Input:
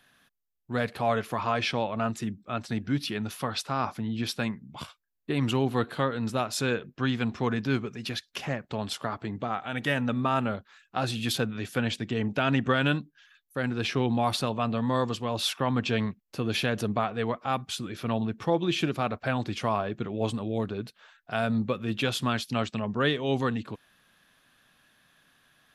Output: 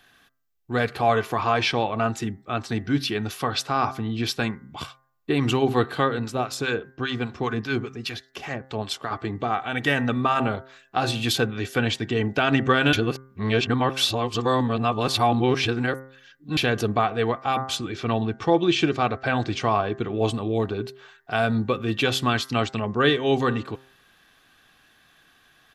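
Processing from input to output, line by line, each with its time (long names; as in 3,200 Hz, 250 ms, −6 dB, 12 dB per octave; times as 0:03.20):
0:06.19–0:09.11: two-band tremolo in antiphase 5 Hz, crossover 900 Hz
0:12.93–0:16.57: reverse
0:17.77–0:20.15: low-pass filter 8,200 Hz 24 dB per octave
whole clip: parametric band 10,000 Hz −6.5 dB 0.31 octaves; comb filter 2.6 ms, depth 38%; hum removal 132 Hz, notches 16; level +5.5 dB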